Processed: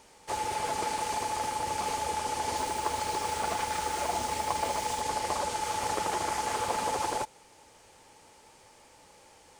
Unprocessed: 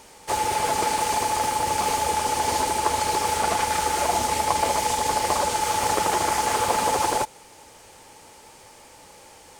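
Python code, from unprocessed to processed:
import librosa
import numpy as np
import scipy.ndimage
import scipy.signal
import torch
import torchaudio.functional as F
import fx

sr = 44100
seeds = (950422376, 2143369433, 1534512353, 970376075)

y = fx.quant_dither(x, sr, seeds[0], bits=6, dither='none', at=(2.56, 5.01))
y = fx.peak_eq(y, sr, hz=15000.0, db=-7.5, octaves=0.65)
y = y * librosa.db_to_amplitude(-8.0)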